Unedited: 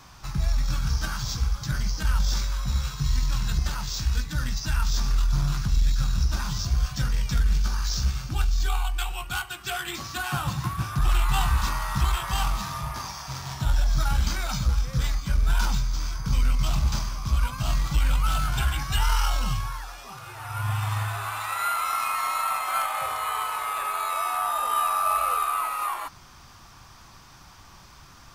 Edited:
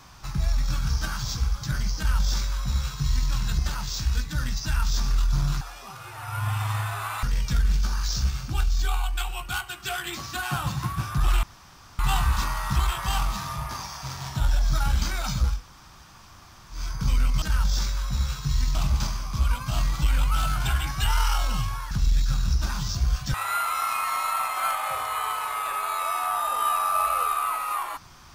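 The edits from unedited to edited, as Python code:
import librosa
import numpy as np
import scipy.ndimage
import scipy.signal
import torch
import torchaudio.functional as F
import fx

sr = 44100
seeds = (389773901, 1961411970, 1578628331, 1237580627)

y = fx.edit(x, sr, fx.duplicate(start_s=1.97, length_s=1.33, to_s=16.67),
    fx.swap(start_s=5.61, length_s=1.43, other_s=19.83, other_length_s=1.62),
    fx.insert_room_tone(at_s=11.24, length_s=0.56),
    fx.room_tone_fill(start_s=14.81, length_s=1.21, crossfade_s=0.16), tone=tone)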